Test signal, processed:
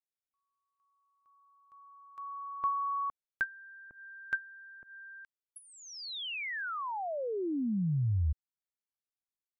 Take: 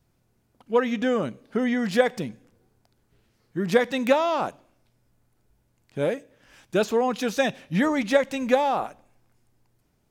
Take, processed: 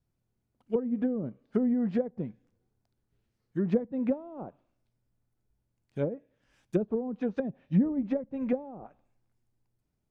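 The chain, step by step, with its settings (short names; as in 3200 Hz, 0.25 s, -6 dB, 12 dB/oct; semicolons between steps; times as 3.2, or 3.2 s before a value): treble ducked by the level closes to 350 Hz, closed at -19.5 dBFS; low shelf 280 Hz +6.5 dB; upward expander 1.5:1, over -42 dBFS; gain -3 dB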